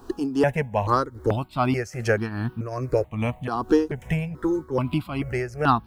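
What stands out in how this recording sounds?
a quantiser's noise floor 12 bits, dither none
tremolo triangle 2.5 Hz, depth 75%
notches that jump at a steady rate 2.3 Hz 580–2,100 Hz

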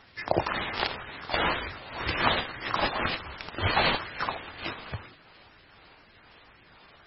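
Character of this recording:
phaser sweep stages 4, 2 Hz, lowest notch 250–1,000 Hz
aliases and images of a low sample rate 7,200 Hz, jitter 20%
MP3

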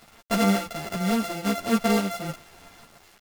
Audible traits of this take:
a buzz of ramps at a fixed pitch in blocks of 64 samples
sample-and-hold tremolo
a quantiser's noise floor 8 bits, dither none
a shimmering, thickened sound

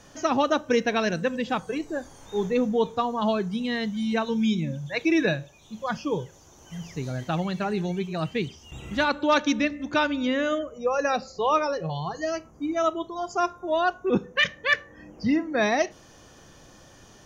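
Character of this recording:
background noise floor −52 dBFS
spectral slope −3.5 dB per octave

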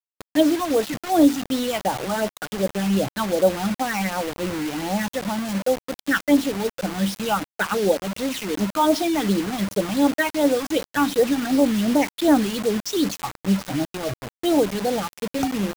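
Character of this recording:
phaser sweep stages 8, 2.7 Hz, lowest notch 510–2,600 Hz
a quantiser's noise floor 6 bits, dither none

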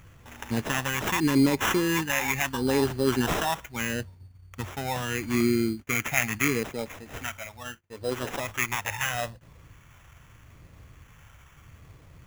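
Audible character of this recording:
phaser sweep stages 2, 0.77 Hz, lowest notch 350–1,600 Hz
aliases and images of a low sample rate 4,500 Hz, jitter 0%

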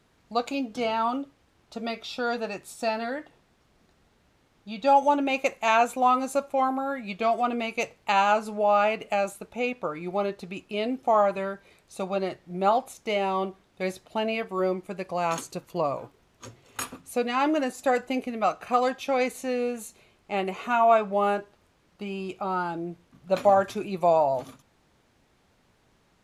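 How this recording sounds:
background noise floor −65 dBFS
spectral slope −3.0 dB per octave

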